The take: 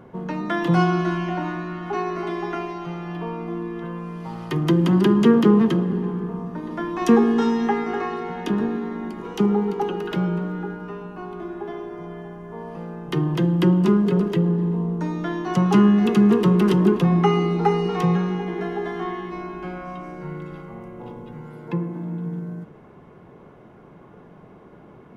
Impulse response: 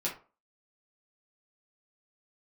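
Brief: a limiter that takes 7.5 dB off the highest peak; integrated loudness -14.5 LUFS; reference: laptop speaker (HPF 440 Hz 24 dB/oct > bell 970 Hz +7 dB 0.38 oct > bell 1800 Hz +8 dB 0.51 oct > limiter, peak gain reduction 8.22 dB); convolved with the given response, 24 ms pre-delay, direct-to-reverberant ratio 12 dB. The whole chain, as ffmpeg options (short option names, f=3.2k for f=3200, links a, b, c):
-filter_complex "[0:a]alimiter=limit=-11.5dB:level=0:latency=1,asplit=2[a][b];[1:a]atrim=start_sample=2205,adelay=24[c];[b][c]afir=irnorm=-1:irlink=0,volume=-16.5dB[d];[a][d]amix=inputs=2:normalize=0,highpass=f=440:w=0.5412,highpass=f=440:w=1.3066,equalizer=f=970:t=o:w=0.38:g=7,equalizer=f=1.8k:t=o:w=0.51:g=8,volume=15dB,alimiter=limit=-3dB:level=0:latency=1"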